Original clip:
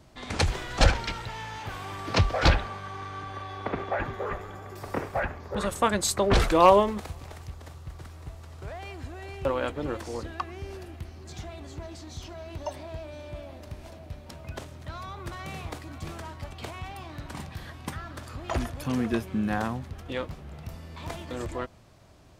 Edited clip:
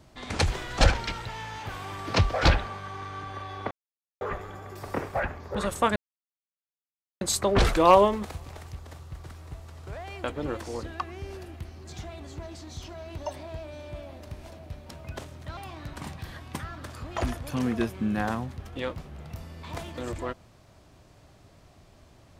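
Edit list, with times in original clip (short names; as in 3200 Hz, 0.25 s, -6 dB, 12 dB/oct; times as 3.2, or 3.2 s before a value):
3.71–4.21 mute
5.96 insert silence 1.25 s
8.99–9.64 cut
14.97–16.9 cut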